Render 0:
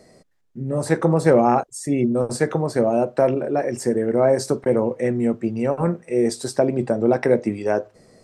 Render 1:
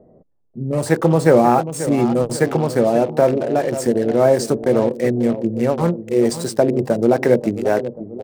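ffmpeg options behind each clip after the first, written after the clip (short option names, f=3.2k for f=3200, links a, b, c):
-filter_complex "[0:a]asplit=2[a][b];[b]adelay=537,lowpass=f=3k:p=1,volume=-12dB,asplit=2[c][d];[d]adelay=537,lowpass=f=3k:p=1,volume=0.49,asplit=2[e][f];[f]adelay=537,lowpass=f=3k:p=1,volume=0.49,asplit=2[g][h];[h]adelay=537,lowpass=f=3k:p=1,volume=0.49,asplit=2[i][j];[j]adelay=537,lowpass=f=3k:p=1,volume=0.49[k];[a][c][e][g][i][k]amix=inputs=6:normalize=0,acrossover=split=900[l][m];[m]acrusher=bits=5:mix=0:aa=0.5[n];[l][n]amix=inputs=2:normalize=0,volume=3dB"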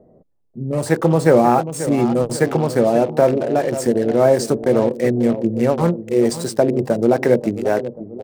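-af "dynaudnorm=f=260:g=7:m=11.5dB,volume=-1dB"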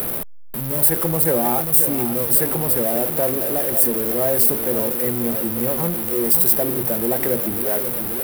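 -af "aeval=exprs='val(0)+0.5*0.15*sgn(val(0))':c=same,aexciter=amount=15.5:drive=6.1:freq=9.6k,volume=-10dB"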